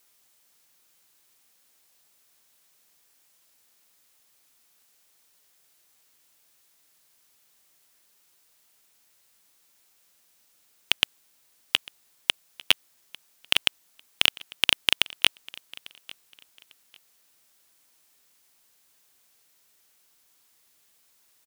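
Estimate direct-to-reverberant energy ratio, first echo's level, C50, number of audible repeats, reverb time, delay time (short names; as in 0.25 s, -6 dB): none, -22.0 dB, none, 2, none, 0.848 s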